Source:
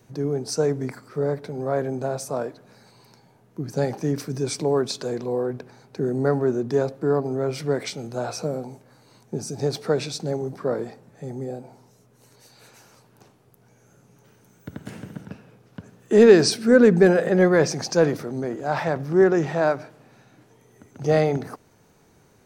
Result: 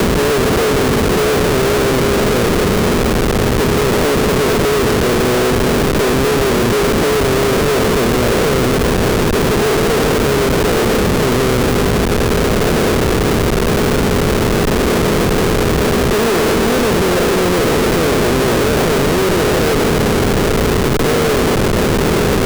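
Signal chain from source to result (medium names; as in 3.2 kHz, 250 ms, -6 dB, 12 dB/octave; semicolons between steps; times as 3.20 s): spectral levelling over time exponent 0.2; Schmitt trigger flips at -12.5 dBFS; three bands compressed up and down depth 40%; trim -2.5 dB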